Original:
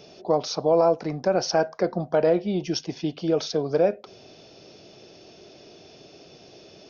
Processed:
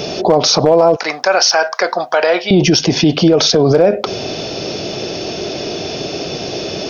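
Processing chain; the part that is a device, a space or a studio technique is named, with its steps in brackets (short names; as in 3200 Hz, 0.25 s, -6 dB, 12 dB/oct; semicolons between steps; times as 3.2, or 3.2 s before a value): 0.96–2.51 HPF 1200 Hz 12 dB/oct; loud club master (compressor 2:1, threshold -25 dBFS, peak gain reduction 6 dB; hard clip -17.5 dBFS, distortion -27 dB; maximiser +28 dB); gain -2 dB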